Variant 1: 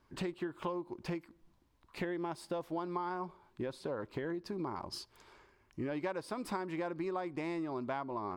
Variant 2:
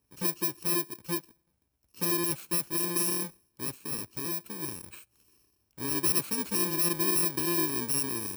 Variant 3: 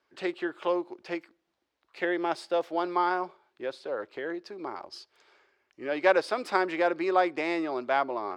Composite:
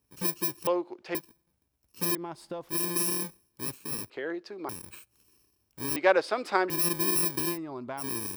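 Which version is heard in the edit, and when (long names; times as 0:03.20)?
2
0:00.67–0:01.15: punch in from 3
0:02.15–0:02.69: punch in from 1
0:04.10–0:04.69: punch in from 3
0:05.96–0:06.70: punch in from 3
0:07.53–0:08.02: punch in from 1, crossfade 0.10 s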